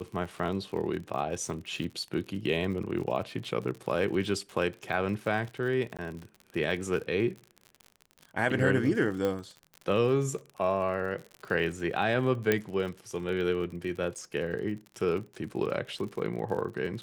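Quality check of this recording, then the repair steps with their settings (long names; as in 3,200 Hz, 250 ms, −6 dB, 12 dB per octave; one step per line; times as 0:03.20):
surface crackle 50 per second −37 dBFS
0:05.97–0:05.99: drop-out 17 ms
0:09.25: click −18 dBFS
0:12.52: click −11 dBFS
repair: click removal
repair the gap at 0:05.97, 17 ms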